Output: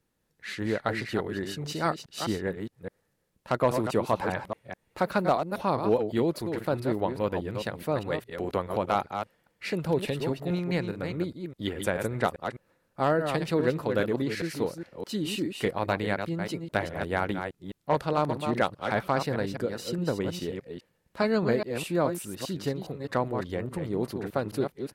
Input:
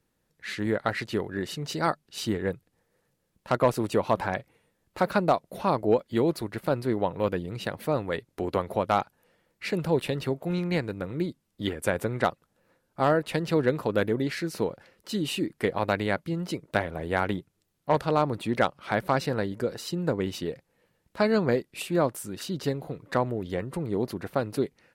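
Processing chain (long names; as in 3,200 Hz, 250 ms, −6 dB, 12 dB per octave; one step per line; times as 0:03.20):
delay that plays each chunk backwards 206 ms, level −6.5 dB
level −2 dB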